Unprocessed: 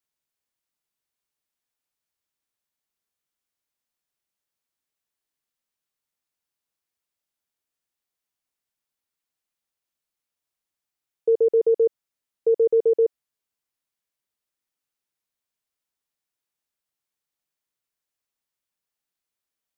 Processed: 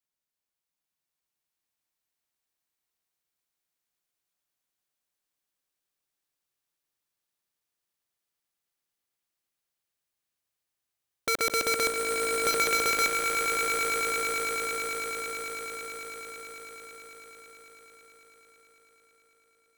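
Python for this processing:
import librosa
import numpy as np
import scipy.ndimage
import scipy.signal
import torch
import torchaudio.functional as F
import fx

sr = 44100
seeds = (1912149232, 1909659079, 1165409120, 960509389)

y = (np.mod(10.0 ** (17.5 / 20.0) * x + 1.0, 2.0) - 1.0) / 10.0 ** (17.5 / 20.0)
y = fx.echo_swell(y, sr, ms=110, loudest=8, wet_db=-8.0)
y = y * 10.0 ** (-4.0 / 20.0)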